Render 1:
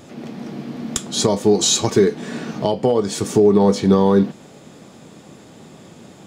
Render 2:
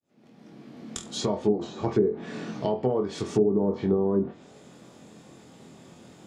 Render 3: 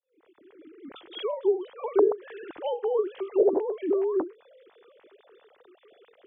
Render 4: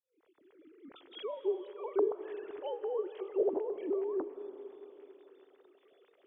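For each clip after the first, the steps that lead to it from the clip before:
fade-in on the opening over 1.54 s; flutter echo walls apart 4 m, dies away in 0.24 s; low-pass that closes with the level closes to 540 Hz, closed at -9.5 dBFS; trim -8.5 dB
formants replaced by sine waves; in parallel at -1.5 dB: compression, threshold -32 dBFS, peak gain reduction 16.5 dB; on the sum: trim -2.5 dB
reverberation RT60 3.3 s, pre-delay 120 ms, DRR 11.5 dB; trim -9 dB

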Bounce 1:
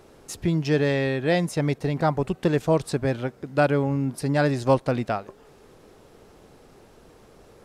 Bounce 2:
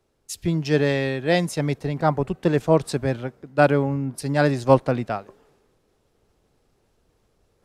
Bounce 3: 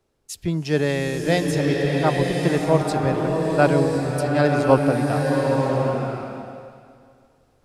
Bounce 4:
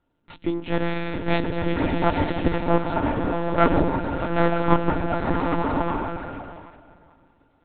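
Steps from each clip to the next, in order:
reverse; upward compressor, threshold -43 dBFS; reverse; three bands expanded up and down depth 70%; trim +1 dB
swelling reverb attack 1070 ms, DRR 0 dB; trim -1 dB
comb filter that takes the minimum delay 2.9 ms; monotone LPC vocoder at 8 kHz 170 Hz; small resonant body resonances 280/900/1400 Hz, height 13 dB, ringing for 90 ms; trim -1.5 dB

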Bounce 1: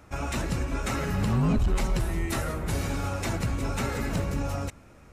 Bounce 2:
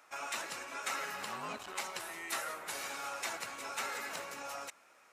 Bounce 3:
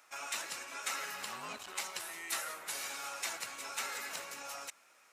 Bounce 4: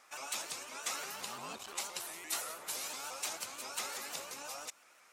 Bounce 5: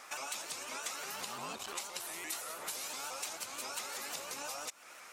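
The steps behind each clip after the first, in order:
high-pass 850 Hz 12 dB/octave; trim -3 dB
treble shelf 2 kHz +8.5 dB; trim -5 dB
dynamic bell 1.8 kHz, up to -8 dB, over -55 dBFS, Q 1.4; vibrato with a chosen wave saw up 5.8 Hz, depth 160 cents; trim +1.5 dB
compression 5:1, threshold -50 dBFS, peak gain reduction 16 dB; trim +10.5 dB

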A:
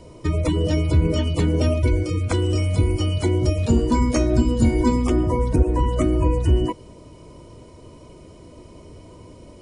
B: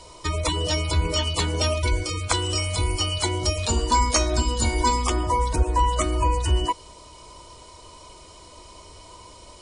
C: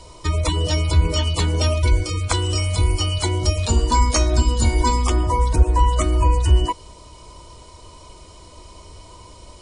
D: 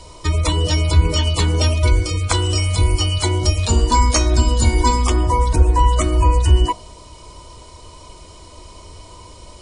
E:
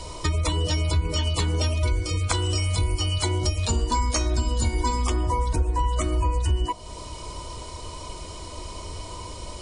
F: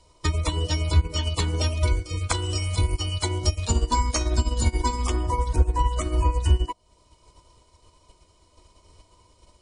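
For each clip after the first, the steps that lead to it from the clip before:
graphic EQ 125/250/500/1000/4000/8000 Hz -11/-10/-4/+8/+10/+9 dB
bass shelf 250 Hz +7.5 dB
de-hum 56.22 Hz, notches 27; trim +3 dB
compression 3:1, threshold -28 dBFS, peak gain reduction 15.5 dB; trim +3.5 dB
upward expansion 2.5:1, over -37 dBFS; trim +6 dB

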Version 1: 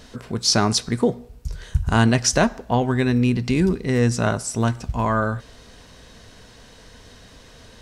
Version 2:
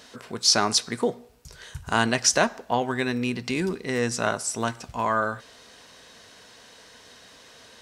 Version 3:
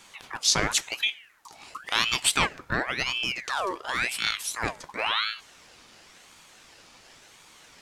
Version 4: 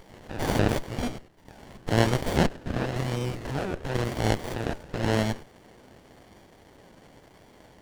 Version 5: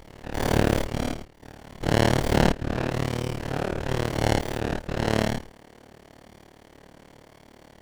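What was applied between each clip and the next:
high-pass 580 Hz 6 dB/octave
ring modulator with a swept carrier 1.8 kHz, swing 60%, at 0.94 Hz
spectrogram pixelated in time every 100 ms; sliding maximum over 33 samples; trim +4 dB
every event in the spectrogram widened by 120 ms; AM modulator 37 Hz, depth 95%; trim +1.5 dB

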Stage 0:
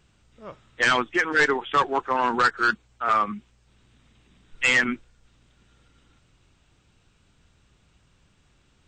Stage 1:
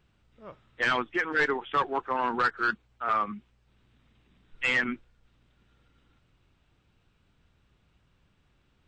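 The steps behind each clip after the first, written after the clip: peaking EQ 7.3 kHz -11 dB 1.1 oct; trim -5 dB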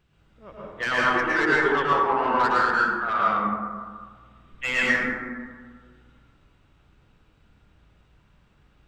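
saturation -19 dBFS, distortion -20 dB; plate-style reverb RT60 1.7 s, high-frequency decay 0.35×, pre-delay 95 ms, DRR -6.5 dB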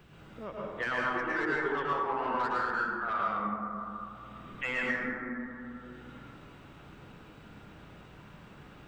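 peaking EQ 5.7 kHz -5 dB 2.5 oct; three bands compressed up and down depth 70%; trim -8 dB

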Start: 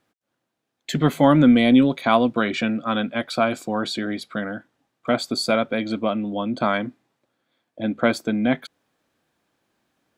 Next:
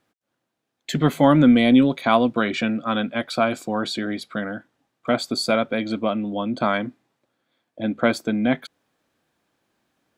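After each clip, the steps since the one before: no audible change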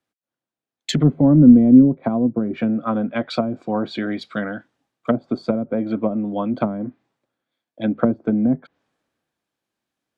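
low-pass that closes with the level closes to 320 Hz, closed at -17 dBFS; three bands expanded up and down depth 40%; trim +4 dB

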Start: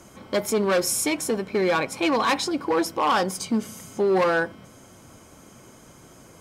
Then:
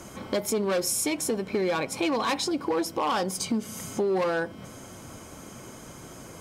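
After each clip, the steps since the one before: dynamic bell 1.5 kHz, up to -4 dB, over -38 dBFS, Q 0.94; compression 2.5:1, threshold -33 dBFS, peak gain reduction 10 dB; trim +5 dB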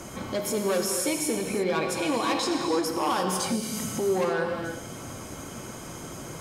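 peak limiter -24.5 dBFS, peak gain reduction 9 dB; gated-style reverb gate 370 ms flat, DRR 2.5 dB; trim +3 dB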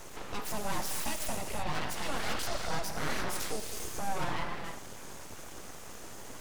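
full-wave rectifier; trim -4.5 dB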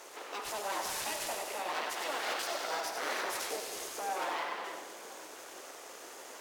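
high-pass 360 Hz 24 dB/octave; two-band feedback delay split 580 Hz, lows 507 ms, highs 95 ms, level -7 dB; decimation joined by straight lines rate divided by 2×

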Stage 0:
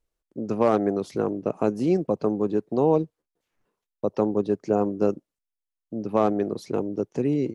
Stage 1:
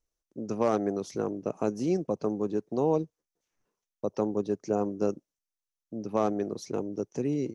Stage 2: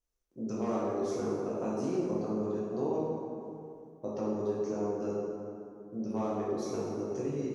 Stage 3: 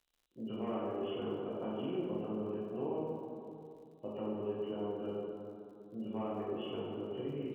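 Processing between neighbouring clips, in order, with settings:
peaking EQ 6 kHz +12 dB 0.41 oct; trim -5.5 dB
compression 3:1, threshold -29 dBFS, peak gain reduction 7 dB; plate-style reverb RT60 2.6 s, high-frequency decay 0.5×, DRR -8 dB; trim -8 dB
knee-point frequency compression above 2.3 kHz 4:1; crackle 74 per s -54 dBFS; trim -5.5 dB

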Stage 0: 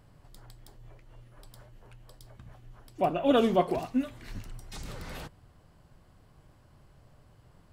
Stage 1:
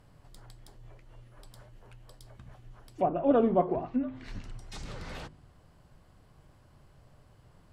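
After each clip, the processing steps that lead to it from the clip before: de-hum 51.83 Hz, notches 7; low-pass that closes with the level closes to 1.1 kHz, closed at -26.5 dBFS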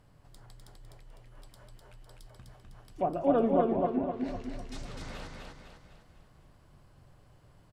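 feedback delay 252 ms, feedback 46%, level -3 dB; trim -2.5 dB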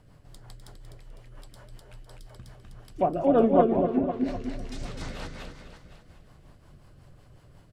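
rotary cabinet horn 5.5 Hz; trim +7 dB

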